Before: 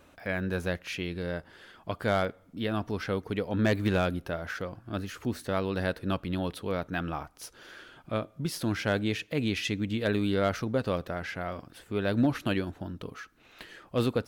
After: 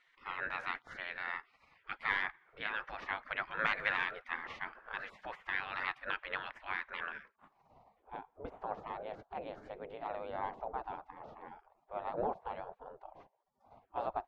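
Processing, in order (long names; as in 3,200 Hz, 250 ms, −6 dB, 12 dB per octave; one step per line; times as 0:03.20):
pitch vibrato 15 Hz 34 cents
gate on every frequency bin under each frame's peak −20 dB weak
low-pass filter sweep 1,800 Hz → 750 Hz, 0:07.00–0:07.74
level +4.5 dB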